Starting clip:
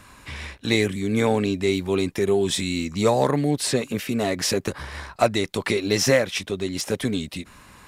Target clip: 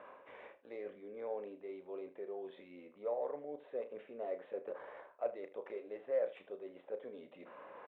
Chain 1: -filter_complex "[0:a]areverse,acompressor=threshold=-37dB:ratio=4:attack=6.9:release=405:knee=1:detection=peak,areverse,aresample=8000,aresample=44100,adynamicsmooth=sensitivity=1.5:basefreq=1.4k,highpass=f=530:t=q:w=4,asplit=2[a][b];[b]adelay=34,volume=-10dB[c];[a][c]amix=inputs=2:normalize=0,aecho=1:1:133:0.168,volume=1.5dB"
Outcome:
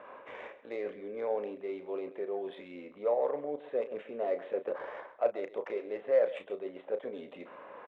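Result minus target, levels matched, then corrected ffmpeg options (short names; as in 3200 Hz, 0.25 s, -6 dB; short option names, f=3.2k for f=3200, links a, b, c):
echo 55 ms late; compressor: peak gain reduction -8 dB
-filter_complex "[0:a]areverse,acompressor=threshold=-48dB:ratio=4:attack=6.9:release=405:knee=1:detection=peak,areverse,aresample=8000,aresample=44100,adynamicsmooth=sensitivity=1.5:basefreq=1.4k,highpass=f=530:t=q:w=4,asplit=2[a][b];[b]adelay=34,volume=-10dB[c];[a][c]amix=inputs=2:normalize=0,aecho=1:1:78:0.168,volume=1.5dB"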